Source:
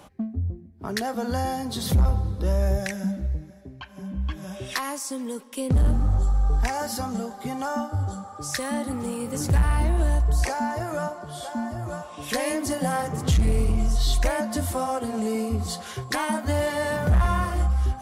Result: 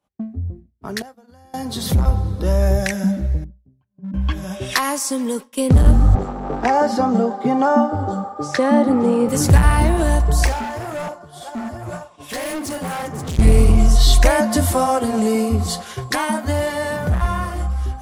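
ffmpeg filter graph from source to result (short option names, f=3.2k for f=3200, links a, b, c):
-filter_complex "[0:a]asettb=1/sr,asplit=3[a][b][c];[a]atrim=end=1.024[d];[b]atrim=start=1.02:end=1.54,asetpts=PTS-STARTPTS,afade=t=in:d=0.004:c=qsin,afade=t=out:st=0.516:d=0.004:c=qsin,agate=range=-33dB:threshold=-23dB:ratio=3:release=100:detection=peak,acompressor=threshold=-37dB:ratio=16:attack=3.2:release=140:knee=1:detection=peak[e];[c]atrim=start=1.536[f];[d][e]acrossfade=d=0.004:c1=hsin:c2=qsin[g];[g][f]acrossfade=d=0.004:c1=qsin:c2=hsin,asettb=1/sr,asplit=3[h][i][j];[h]atrim=end=3.444[k];[i]atrim=start=3.44:end=4.14,asetpts=PTS-STARTPTS,afade=t=in:d=0.004:c=qsin,afade=t=out:st=0.696:d=0.004:c=qsin,bandpass=f=160:t=q:w=1.5,aeval=exprs='0.0266*(abs(mod(val(0)/0.0266+3,4)-2)-1)':c=same[l];[j]atrim=start=4.136[m];[k][l]acrossfade=d=0.004:c1=hsin:c2=qsin[n];[n][m]acrossfade=d=0.004:c1=qsin:c2=hsin,asettb=1/sr,asplit=3[o][p][q];[o]atrim=end=6.154[r];[p]atrim=start=6.15:end=9.29,asetpts=PTS-STARTPTS,afade=t=in:d=0.004:c=qsin,afade=t=out:st=3.136:d=0.004:c=qsin,tiltshelf=f=1.3k:g=8,asoftclip=type=hard:threshold=-10dB,highpass=260,lowpass=6k[s];[q]atrim=start=9.286[t];[r][s]acrossfade=d=0.004:c1=hsin:c2=qsin[u];[u][t]acrossfade=d=0.004:c1=qsin:c2=hsin,asettb=1/sr,asplit=3[v][w][x];[v]atrim=end=10.464[y];[w]atrim=start=10.46:end=13.39,asetpts=PTS-STARTPTS,afade=t=in:d=0.004:c=qsin,afade=t=out:st=2.926:d=0.004:c=qsin,flanger=delay=3.2:depth=8.8:regen=41:speed=1.9:shape=sinusoidal,asoftclip=type=hard:threshold=-32dB[z];[x]atrim=start=13.386[aa];[y][z]acrossfade=d=0.004:c1=hsin:c2=qsin[ab];[ab][aa]acrossfade=d=0.004:c1=qsin:c2=hsin,agate=range=-33dB:threshold=-33dB:ratio=3:detection=peak,bandreject=f=60:t=h:w=6,bandreject=f=120:t=h:w=6,dynaudnorm=f=230:g=21:m=9.5dB,volume=1.5dB"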